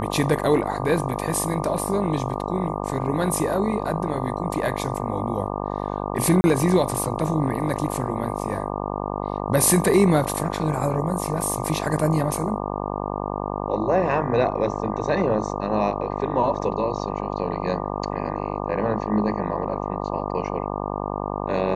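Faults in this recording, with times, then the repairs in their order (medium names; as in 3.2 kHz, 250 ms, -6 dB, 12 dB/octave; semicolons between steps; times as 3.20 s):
buzz 50 Hz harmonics 24 -28 dBFS
6.41–6.44 s: dropout 30 ms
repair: de-hum 50 Hz, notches 24; interpolate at 6.41 s, 30 ms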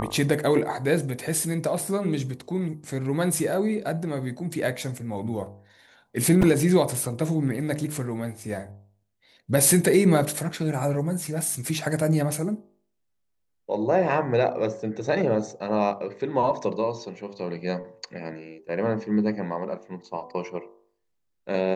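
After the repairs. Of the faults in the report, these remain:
nothing left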